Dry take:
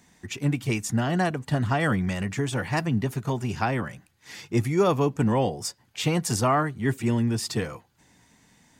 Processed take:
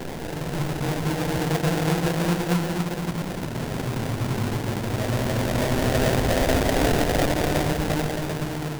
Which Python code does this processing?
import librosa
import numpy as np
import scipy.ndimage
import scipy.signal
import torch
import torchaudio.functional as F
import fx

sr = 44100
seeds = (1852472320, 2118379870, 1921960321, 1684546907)

y = fx.tracing_dist(x, sr, depth_ms=0.28)
y = fx.paulstretch(y, sr, seeds[0], factor=12.0, window_s=0.25, from_s=5.97)
y = fx.sample_hold(y, sr, seeds[1], rate_hz=1200.0, jitter_pct=20)